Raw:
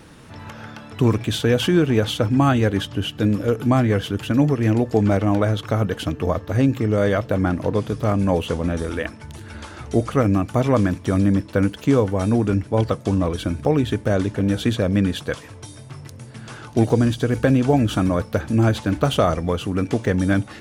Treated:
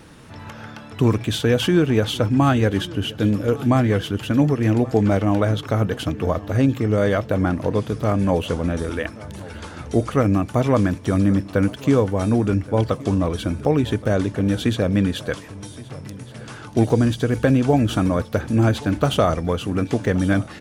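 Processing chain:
repeating echo 1,124 ms, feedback 40%, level −20 dB

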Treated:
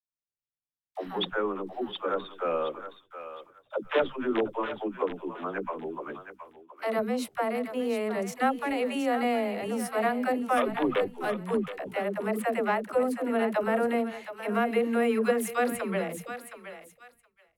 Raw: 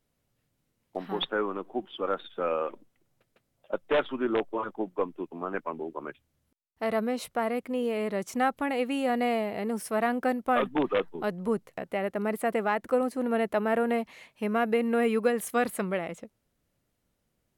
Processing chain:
feedback echo with a high-pass in the loop 719 ms, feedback 32%, high-pass 880 Hz, level −8 dB
downward expander −48 dBFS
all-pass dispersion lows, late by 110 ms, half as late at 310 Hz

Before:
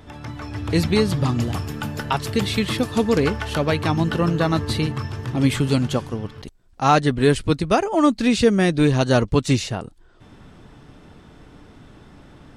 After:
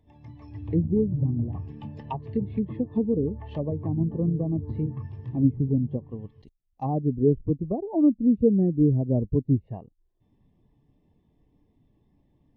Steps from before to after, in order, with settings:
treble cut that deepens with the level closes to 480 Hz, closed at −16 dBFS
Butterworth band-reject 1,400 Hz, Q 2.7
every bin expanded away from the loudest bin 1.5 to 1
level −2 dB

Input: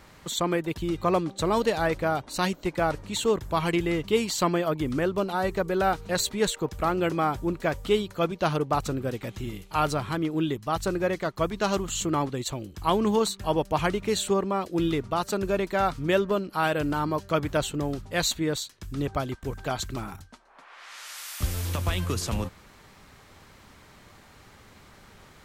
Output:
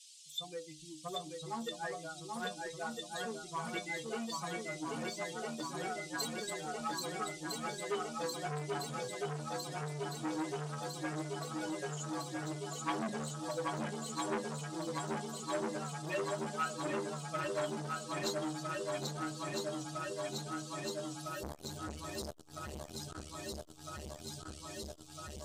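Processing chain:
spectral dynamics exaggerated over time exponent 3
noise in a band 3,000–9,200 Hz −51 dBFS
stiff-string resonator 73 Hz, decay 0.39 s, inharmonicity 0.008
feedback echo with a long and a short gap by turns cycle 1,306 ms, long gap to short 1.5 to 1, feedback 78%, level −3.5 dB
saturating transformer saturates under 1,400 Hz
level +3 dB

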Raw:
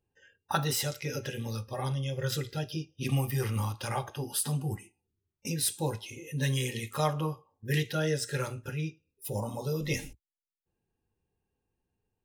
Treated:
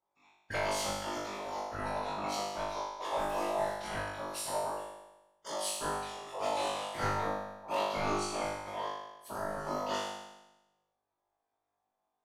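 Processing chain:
low-pass filter 8,600 Hz 12 dB per octave
ring modulation 760 Hz
random phases in short frames
tape wow and flutter 28 cents
in parallel at −10 dB: wave folding −27.5 dBFS
on the sum: flutter between parallel walls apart 3.4 metres, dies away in 1 s
on a send at −17.5 dB: convolution reverb RT60 0.75 s, pre-delay 3 ms
on the sum: level −8.5 dB

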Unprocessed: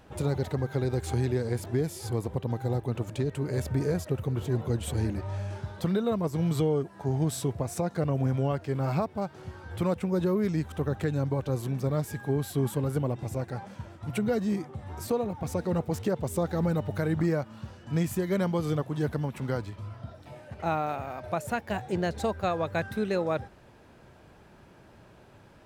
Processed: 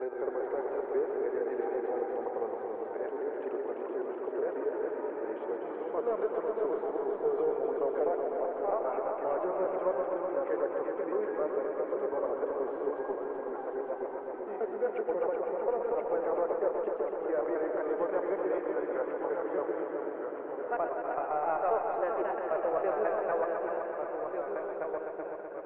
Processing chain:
slices reordered back to front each 134 ms, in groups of 7
inverse Chebyshev high-pass filter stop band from 160 Hz, stop band 50 dB
in parallel at −4 dB: hard clipping −30.5 dBFS, distortion −10 dB
on the sum: delay with pitch and tempo change per echo 138 ms, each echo −1 semitone, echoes 2, each echo −6 dB
Gaussian smoothing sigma 5.5 samples
on a send: echo machine with several playback heads 126 ms, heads all three, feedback 65%, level −9.5 dB
on the sum: level −2.5 dB

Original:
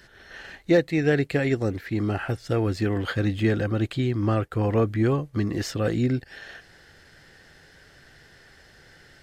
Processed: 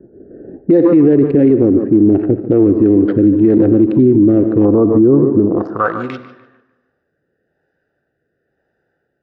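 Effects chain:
adaptive Wiener filter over 41 samples
low-pass that shuts in the quiet parts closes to 970 Hz, open at −21 dBFS
0:04.65–0:06.08: high shelf with overshoot 1,600 Hz −11.5 dB, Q 3
band-pass filter sweep 320 Hz → 6,800 Hz, 0:05.30–0:06.42
rotating-speaker cabinet horn 1 Hz
tape delay 147 ms, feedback 37%, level −14 dB, low-pass 3,900 Hz
on a send at −15.5 dB: convolution reverb RT60 1.1 s, pre-delay 15 ms
on the sum: boost into a limiter +29.5 dB
level −2 dB

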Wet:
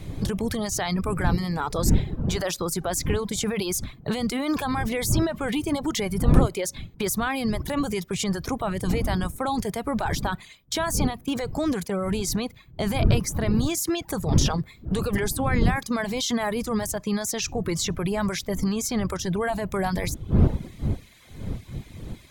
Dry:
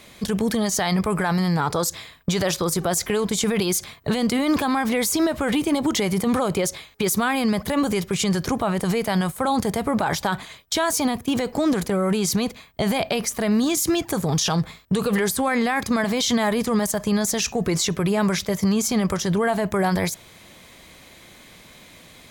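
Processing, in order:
wind on the microphone 150 Hz −23 dBFS
reverb reduction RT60 0.7 s
level −4 dB

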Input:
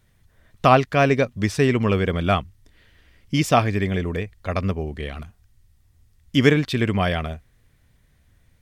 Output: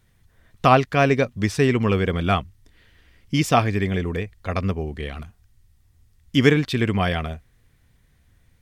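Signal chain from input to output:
notch filter 600 Hz, Q 12

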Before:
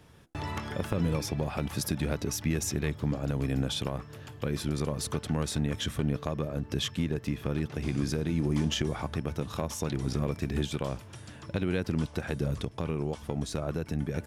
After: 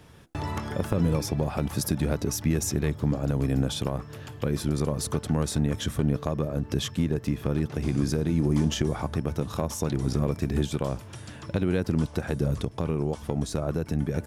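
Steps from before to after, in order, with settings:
dynamic equaliser 2,700 Hz, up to −6 dB, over −50 dBFS, Q 0.75
level +4.5 dB

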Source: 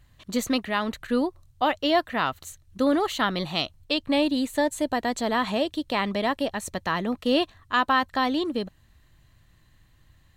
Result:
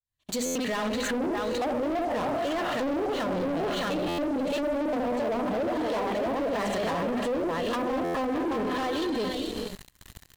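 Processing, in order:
fade in at the beginning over 1.09 s
multi-tap delay 70/616 ms −6/−4.5 dB
reverb whose tail is shaped and stops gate 490 ms rising, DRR 11 dB
flanger 0.67 Hz, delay 1.9 ms, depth 3.1 ms, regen −60%
treble cut that deepens with the level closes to 540 Hz, closed at −22 dBFS
high-shelf EQ 4,300 Hz +12 dB
mains-hum notches 50/100/150/200/250/300/350/400 Hz
leveller curve on the samples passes 5
dynamic equaliser 510 Hz, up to +7 dB, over −35 dBFS, Q 1.5
brickwall limiter −23.5 dBFS, peak gain reduction 15 dB
buffer that repeats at 0:00.45/0:04.08/0:08.04, samples 512, times 8

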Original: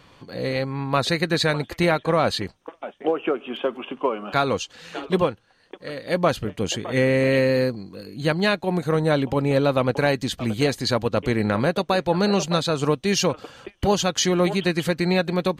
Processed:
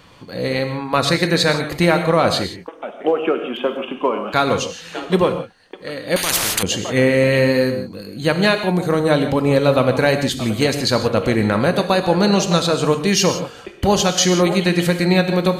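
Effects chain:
high-shelf EQ 6,800 Hz +4.5 dB
reverb whose tail is shaped and stops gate 190 ms flat, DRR 7 dB
0:06.16–0:06.63: every bin compressed towards the loudest bin 10 to 1
level +4 dB

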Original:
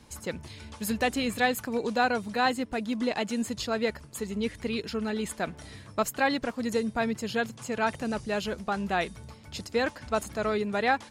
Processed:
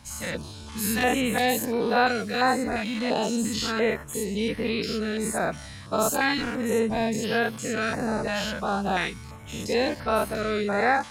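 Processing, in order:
every bin's largest magnitude spread in time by 120 ms
notch on a step sequencer 2.9 Hz 400–7,100 Hz

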